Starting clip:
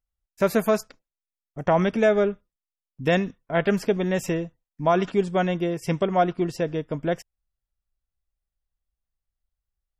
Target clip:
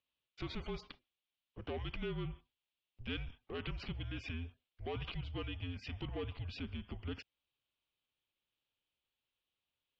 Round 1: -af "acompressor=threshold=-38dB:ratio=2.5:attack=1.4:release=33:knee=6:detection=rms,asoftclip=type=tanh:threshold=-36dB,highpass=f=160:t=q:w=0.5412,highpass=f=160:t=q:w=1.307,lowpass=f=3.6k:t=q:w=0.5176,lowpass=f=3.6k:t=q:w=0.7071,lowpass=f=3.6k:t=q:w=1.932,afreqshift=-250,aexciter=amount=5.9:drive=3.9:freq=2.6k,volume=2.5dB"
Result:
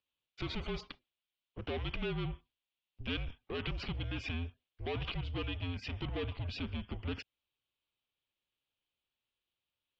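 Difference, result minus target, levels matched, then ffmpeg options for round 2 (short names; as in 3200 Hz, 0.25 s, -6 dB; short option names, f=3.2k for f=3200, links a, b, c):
compressor: peak gain reduction -7 dB
-af "acompressor=threshold=-49.5dB:ratio=2.5:attack=1.4:release=33:knee=6:detection=rms,asoftclip=type=tanh:threshold=-36dB,highpass=f=160:t=q:w=0.5412,highpass=f=160:t=q:w=1.307,lowpass=f=3.6k:t=q:w=0.5176,lowpass=f=3.6k:t=q:w=0.7071,lowpass=f=3.6k:t=q:w=1.932,afreqshift=-250,aexciter=amount=5.9:drive=3.9:freq=2.6k,volume=2.5dB"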